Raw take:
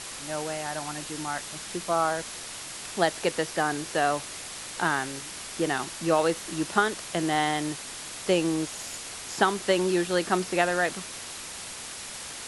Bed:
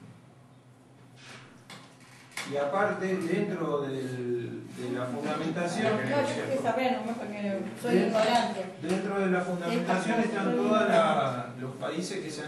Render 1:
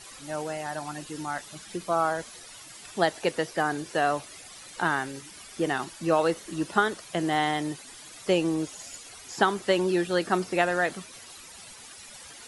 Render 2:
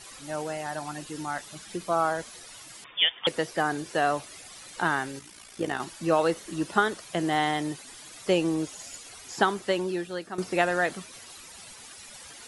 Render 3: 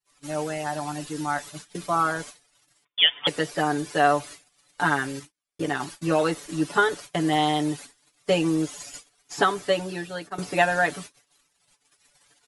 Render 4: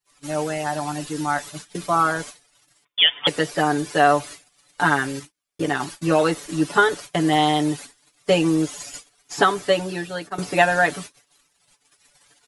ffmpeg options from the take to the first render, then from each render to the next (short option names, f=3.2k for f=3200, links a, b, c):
-af "afftdn=nr=12:nf=-39"
-filter_complex "[0:a]asettb=1/sr,asplit=3[a][b][c];[a]atrim=end=2.844[d];[b]atrim=start=2.84:end=3.27,asetpts=PTS-STARTPTS,afade=t=in:d=0.004:c=qsin,afade=t=out:st=0.426:d=0.004:c=qsin,lowpass=f=3.1k:t=q:w=0.5098,lowpass=f=3.1k:t=q:w=0.6013,lowpass=f=3.1k:t=q:w=0.9,lowpass=f=3.1k:t=q:w=2.563,afreqshift=-3700[e];[c]atrim=start=3.266[f];[d][e]acrossfade=d=0.004:c1=hsin:c2=qsin[g];[g][f]acrossfade=d=0.004:c1=qsin:c2=hsin,asettb=1/sr,asplit=3[h][i][j];[h]atrim=end=5.194[k];[i]atrim=start=5.19:end=5.8,asetpts=PTS-STARTPTS,afade=t=in:d=0.004:c=qsin,afade=t=out:st=0.606:d=0.004:c=qsin,tremolo=f=57:d=0.667[l];[j]atrim=start=5.796[m];[k][l]acrossfade=d=0.004:c1=hsin:c2=qsin[n];[n][m]acrossfade=d=0.004:c1=qsin:c2=hsin,asplit=2[o][p];[o]atrim=end=10.38,asetpts=PTS-STARTPTS,afade=t=out:st=9.36:d=1.02:silence=0.199526[q];[p]atrim=start=10.38,asetpts=PTS-STARTPTS,afade=t=in:d=0.004:c=hsin:silence=0.199526[r];[q][r]concat=n=2:v=0:a=1"
-af "aecho=1:1:6.9:0.99,agate=range=-44dB:threshold=-39dB:ratio=16:detection=peak"
-af "volume=4dB,alimiter=limit=-3dB:level=0:latency=1"